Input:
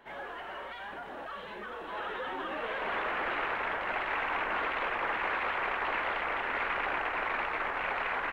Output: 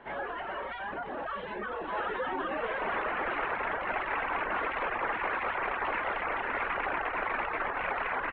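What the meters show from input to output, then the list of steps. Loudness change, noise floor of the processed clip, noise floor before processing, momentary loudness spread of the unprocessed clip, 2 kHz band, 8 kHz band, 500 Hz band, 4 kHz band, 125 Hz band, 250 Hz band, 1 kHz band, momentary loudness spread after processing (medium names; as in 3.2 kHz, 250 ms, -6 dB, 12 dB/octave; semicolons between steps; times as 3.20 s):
+0.5 dB, -39 dBFS, -43 dBFS, 10 LU, 0.0 dB, no reading, +2.5 dB, -3.5 dB, +3.0 dB, +3.0 dB, +1.5 dB, 6 LU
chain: reverb removal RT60 0.58 s; in parallel at +1 dB: gain riding within 5 dB; on the sum: distance through air 370 m; trim -1.5 dB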